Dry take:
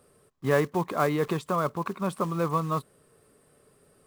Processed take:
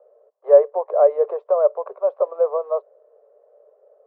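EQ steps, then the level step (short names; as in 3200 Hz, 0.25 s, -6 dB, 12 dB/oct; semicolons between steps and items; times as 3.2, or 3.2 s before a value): steep high-pass 440 Hz 72 dB/oct; synth low-pass 600 Hz, resonance Q 4.9; air absorption 72 m; +3.0 dB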